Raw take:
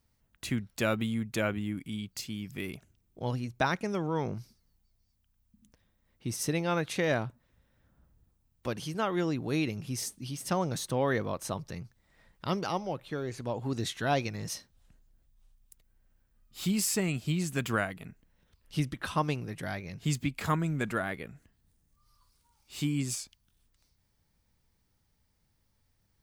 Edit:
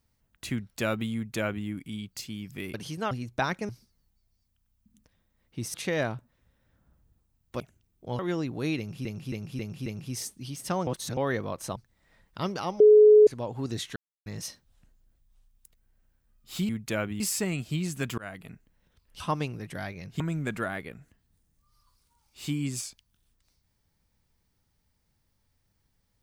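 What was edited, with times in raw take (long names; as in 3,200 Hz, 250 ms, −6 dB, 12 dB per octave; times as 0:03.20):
0:01.15–0:01.66: duplicate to 0:16.76
0:02.74–0:03.33: swap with 0:08.71–0:09.08
0:03.91–0:04.37: remove
0:06.42–0:06.85: remove
0:09.67–0:09.94: repeat, 5 plays
0:10.68–0:10.98: reverse
0:11.57–0:11.83: remove
0:12.87–0:13.34: beep over 424 Hz −11.5 dBFS
0:14.03–0:14.33: silence
0:17.74–0:18.08: fade in equal-power
0:18.76–0:19.08: remove
0:20.08–0:20.54: remove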